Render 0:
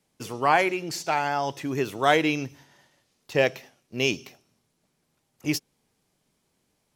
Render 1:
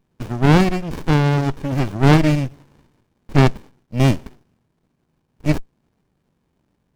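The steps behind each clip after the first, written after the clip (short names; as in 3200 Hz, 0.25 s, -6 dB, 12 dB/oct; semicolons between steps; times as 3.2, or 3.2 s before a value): running maximum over 65 samples; gain +8.5 dB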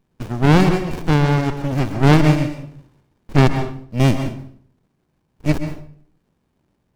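reverb RT60 0.55 s, pre-delay 0.12 s, DRR 7.5 dB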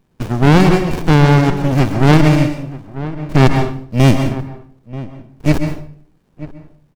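outdoor echo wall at 160 m, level -18 dB; maximiser +7.5 dB; gain -1 dB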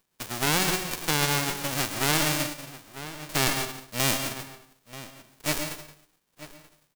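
spectral whitening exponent 0.3; gain -16 dB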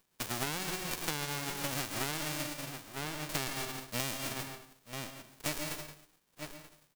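compressor 16:1, threshold -31 dBFS, peak gain reduction 14 dB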